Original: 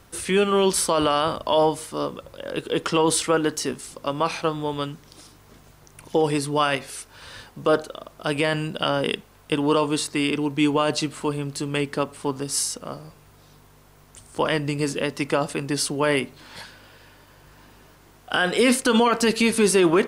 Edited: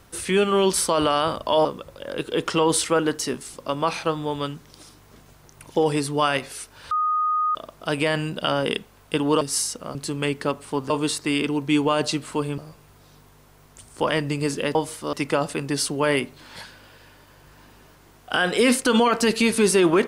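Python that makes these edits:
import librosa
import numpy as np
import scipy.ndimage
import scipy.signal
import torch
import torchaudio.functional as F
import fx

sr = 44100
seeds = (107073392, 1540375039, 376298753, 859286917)

y = fx.edit(x, sr, fx.move(start_s=1.65, length_s=0.38, to_s=15.13),
    fx.bleep(start_s=7.29, length_s=0.64, hz=1240.0, db=-19.0),
    fx.swap(start_s=9.79, length_s=1.68, other_s=12.42, other_length_s=0.54), tone=tone)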